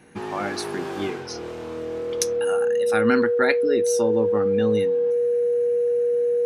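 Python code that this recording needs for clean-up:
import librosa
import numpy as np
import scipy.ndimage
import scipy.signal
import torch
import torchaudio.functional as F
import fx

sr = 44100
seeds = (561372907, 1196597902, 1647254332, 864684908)

y = fx.notch(x, sr, hz=480.0, q=30.0)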